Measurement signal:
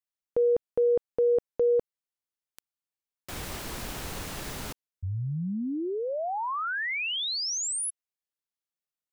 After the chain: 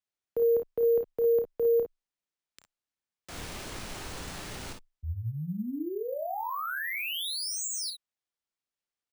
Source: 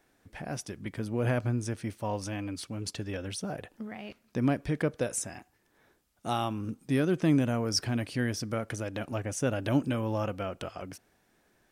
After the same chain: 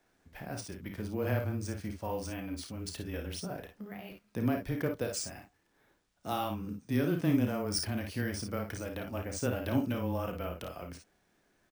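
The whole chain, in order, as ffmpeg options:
ffmpeg -i in.wav -af "aecho=1:1:31|54|64:0.376|0.447|0.251,afreqshift=-14,acrusher=samples=3:mix=1:aa=0.000001,volume=-4.5dB" out.wav

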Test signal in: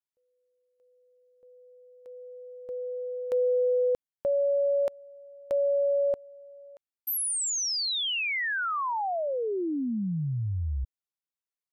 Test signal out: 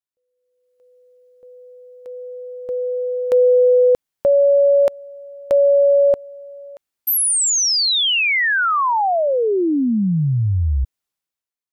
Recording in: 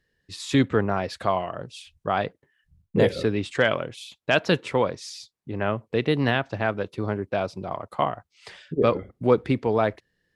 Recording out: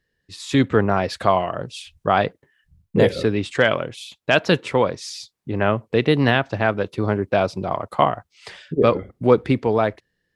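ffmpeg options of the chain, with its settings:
ffmpeg -i in.wav -af "dynaudnorm=framelen=140:gausssize=9:maxgain=13dB,volume=-1dB" out.wav

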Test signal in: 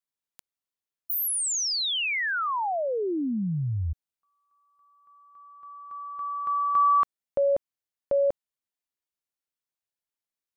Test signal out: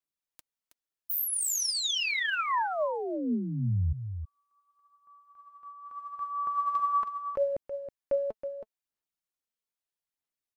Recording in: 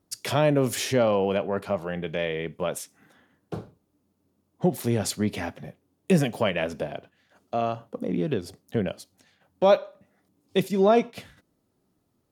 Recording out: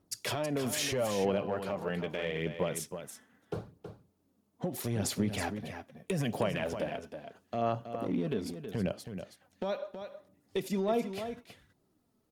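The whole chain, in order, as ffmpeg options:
ffmpeg -i in.wav -filter_complex "[0:a]acompressor=threshold=-22dB:ratio=10:attack=0.31:release=98:knee=1:detection=rms,aphaser=in_gain=1:out_gain=1:delay=4.6:decay=0.41:speed=0.78:type=sinusoidal,asplit=2[link_01][link_02];[link_02]aecho=0:1:322:0.355[link_03];[link_01][link_03]amix=inputs=2:normalize=0,volume=-3.5dB" out.wav

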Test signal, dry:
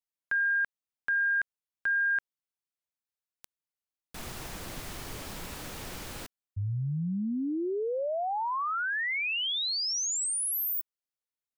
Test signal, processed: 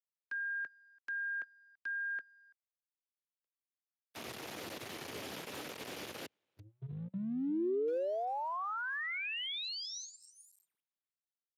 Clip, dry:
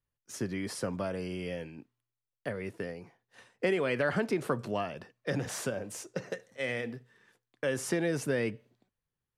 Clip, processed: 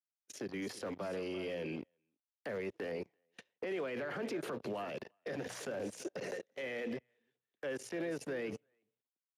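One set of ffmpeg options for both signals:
ffmpeg -i in.wav -filter_complex "[0:a]acrossover=split=400|710|1900[link_01][link_02][link_03][link_04];[link_03]aeval=exprs='val(0)*gte(abs(val(0)),0.00422)':channel_layout=same[link_05];[link_01][link_02][link_05][link_04]amix=inputs=4:normalize=0,highshelf=frequency=4500:gain=3,acompressor=threshold=-42dB:ratio=16:attack=0.19:release=87:knee=6:detection=peak,highpass=frequency=71:width=0.5412,highpass=frequency=71:width=1.3066,alimiter=level_in=18.5dB:limit=-24dB:level=0:latency=1:release=27,volume=-18.5dB,bass=frequency=250:gain=-14,treble=frequency=4000:gain=-8,bandreject=frequency=60:width_type=h:width=6,bandreject=frequency=120:width_type=h:width=6,bandreject=frequency=180:width_type=h:width=6,aecho=1:1:336:0.211,agate=range=-30dB:threshold=-59dB:ratio=16:release=20:detection=rms,acrossover=split=410[link_06][link_07];[link_07]acompressor=threshold=-57dB:ratio=2.5:attack=0.22:release=35:knee=2.83:detection=peak[link_08];[link_06][link_08]amix=inputs=2:normalize=0,volume=16.5dB" -ar 32000 -c:a libspeex -b:a 36k out.spx

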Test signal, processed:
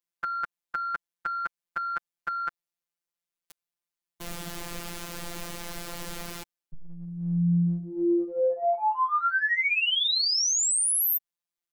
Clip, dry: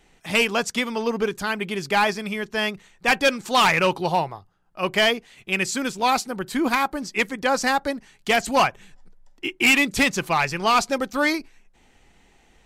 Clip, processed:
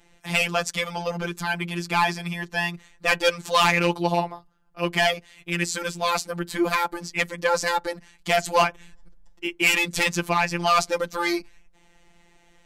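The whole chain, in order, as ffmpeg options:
ffmpeg -i in.wav -af "acontrast=53,afftfilt=real='hypot(re,im)*cos(PI*b)':imag='0':win_size=1024:overlap=0.75,volume=-3.5dB" out.wav

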